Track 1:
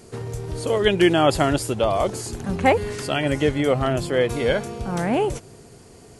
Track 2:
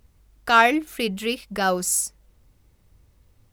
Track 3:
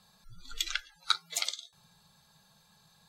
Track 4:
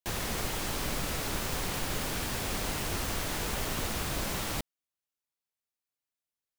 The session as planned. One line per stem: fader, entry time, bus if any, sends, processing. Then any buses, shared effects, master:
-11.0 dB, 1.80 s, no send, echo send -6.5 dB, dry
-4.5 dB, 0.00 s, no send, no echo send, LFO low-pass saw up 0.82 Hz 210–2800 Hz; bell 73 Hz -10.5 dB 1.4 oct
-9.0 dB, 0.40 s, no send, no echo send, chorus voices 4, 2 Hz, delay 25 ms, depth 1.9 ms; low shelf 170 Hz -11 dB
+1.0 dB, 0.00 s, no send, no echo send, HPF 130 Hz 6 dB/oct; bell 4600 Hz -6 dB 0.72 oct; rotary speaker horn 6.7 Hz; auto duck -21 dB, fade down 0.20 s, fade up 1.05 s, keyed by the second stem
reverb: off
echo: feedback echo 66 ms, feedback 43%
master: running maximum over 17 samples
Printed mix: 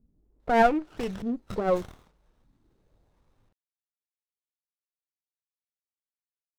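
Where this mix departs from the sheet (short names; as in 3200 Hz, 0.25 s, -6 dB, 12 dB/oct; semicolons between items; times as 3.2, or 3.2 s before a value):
stem 1: muted; stem 4: muted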